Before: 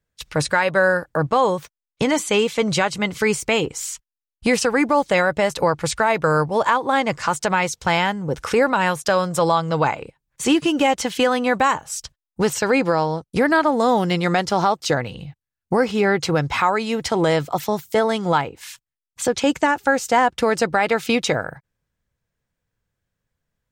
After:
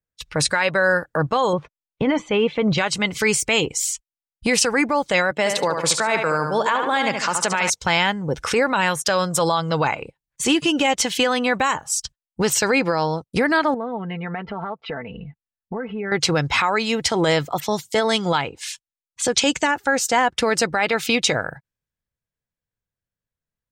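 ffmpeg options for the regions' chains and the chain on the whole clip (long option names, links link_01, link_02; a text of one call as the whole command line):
ffmpeg -i in.wav -filter_complex "[0:a]asettb=1/sr,asplit=3[link_01][link_02][link_03];[link_01]atrim=end=1.534[link_04];[link_02]atrim=start=1.53:end=2.78,asetpts=PTS-STARTPTS,afade=type=in:duration=0.004:curve=qsin,afade=type=out:start_time=1.246:duration=0.004:curve=qsin,lowpass=3300,tiltshelf=frequency=1300:gain=4.5[link_05];[link_03]atrim=start=2.776[link_06];[link_04][link_05]acrossfade=duration=0.004:curve1=hsin:curve2=qsin[link_07];[link_07][link_06]acrossfade=duration=0.004:curve1=qsin:curve2=hsin,asettb=1/sr,asplit=3[link_08][link_09][link_10];[link_08]atrim=end=5.314[link_11];[link_09]atrim=start=5.31:end=7.7,asetpts=PTS-STARTPTS,afade=type=in:duration=0.004:curve=qsin,afade=type=out:start_time=2.386:duration=0.004:curve=qsin,highpass=frequency=170:width=0.5412,highpass=frequency=170:width=1.3066,aecho=1:1:73|146|219|292|365:0.398|0.171|0.0736|0.0317|0.0136,atrim=end_sample=105399[link_12];[link_10]atrim=start=7.696[link_13];[link_11][link_12]acrossfade=duration=0.004:curve1=hsin:curve2=qsin[link_14];[link_14][link_13]acrossfade=duration=0.004:curve1=qsin:curve2=hsin,asettb=1/sr,asplit=3[link_15][link_16][link_17];[link_15]atrim=end=13.744[link_18];[link_16]atrim=start=13.74:end=16.12,asetpts=PTS-STARTPTS,afade=type=in:duration=0.004:curve=qsin,afade=type=out:start_time=2.376:duration=0.004:curve=qsin,lowpass=frequency=2500:width=0.5412,lowpass=frequency=2500:width=1.3066,aecho=1:1:4.5:0.59,atrim=end_sample=104958,acompressor=threshold=-31dB:ratio=2.5:attack=3.2:release=140:knee=1:detection=peak[link_19];[link_17]atrim=start=16.116[link_20];[link_18][link_19]acrossfade=duration=0.004:curve1=hsin:curve2=qsin[link_21];[link_21][link_20]acrossfade=duration=0.004:curve1=qsin:curve2=hsin,asettb=1/sr,asplit=3[link_22][link_23][link_24];[link_22]atrim=end=17.604[link_25];[link_23]atrim=start=17.6:end=19.68,asetpts=PTS-STARTPTS,afade=type=in:duration=0.004:curve=qsin,afade=type=out:start_time=2.076:duration=0.004:curve=qsin,lowpass=11000,adynamicequalizer=threshold=0.0158:dfrequency=2500:dqfactor=0.7:tfrequency=2500:tqfactor=0.7:attack=5:release=100:ratio=0.375:range=2:mode=boostabove:tftype=highshelf[link_26];[link_24]atrim=start=19.676[link_27];[link_25][link_26]acrossfade=duration=0.004:curve1=hsin:curve2=qsin[link_28];[link_28][link_27]acrossfade=duration=0.004:curve1=qsin:curve2=hsin,alimiter=limit=-11dB:level=0:latency=1:release=52,afftdn=noise_reduction=12:noise_floor=-44,adynamicequalizer=threshold=0.0178:dfrequency=1800:dqfactor=0.7:tfrequency=1800:tqfactor=0.7:attack=5:release=100:ratio=0.375:range=3.5:mode=boostabove:tftype=highshelf" out.wav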